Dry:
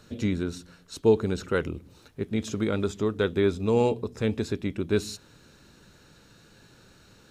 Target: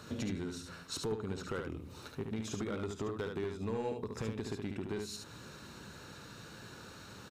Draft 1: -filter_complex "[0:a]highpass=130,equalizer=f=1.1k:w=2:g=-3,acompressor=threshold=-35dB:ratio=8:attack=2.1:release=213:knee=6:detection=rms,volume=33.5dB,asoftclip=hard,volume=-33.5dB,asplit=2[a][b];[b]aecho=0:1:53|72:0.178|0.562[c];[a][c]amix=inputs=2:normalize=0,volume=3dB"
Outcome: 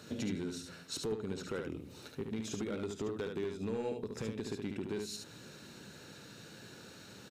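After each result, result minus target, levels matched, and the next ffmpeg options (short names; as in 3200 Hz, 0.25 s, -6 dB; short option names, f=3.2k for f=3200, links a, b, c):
1000 Hz band -5.0 dB; 125 Hz band -4.0 dB
-filter_complex "[0:a]highpass=130,equalizer=f=1.1k:w=2:g=5.5,acompressor=threshold=-35dB:ratio=8:attack=2.1:release=213:knee=6:detection=rms,volume=33.5dB,asoftclip=hard,volume=-33.5dB,asplit=2[a][b];[b]aecho=0:1:53|72:0.178|0.562[c];[a][c]amix=inputs=2:normalize=0,volume=3dB"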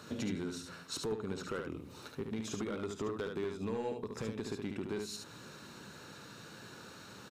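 125 Hz band -3.0 dB
-filter_complex "[0:a]highpass=62,equalizer=f=1.1k:w=2:g=5.5,acompressor=threshold=-35dB:ratio=8:attack=2.1:release=213:knee=6:detection=rms,volume=33.5dB,asoftclip=hard,volume=-33.5dB,asplit=2[a][b];[b]aecho=0:1:53|72:0.178|0.562[c];[a][c]amix=inputs=2:normalize=0,volume=3dB"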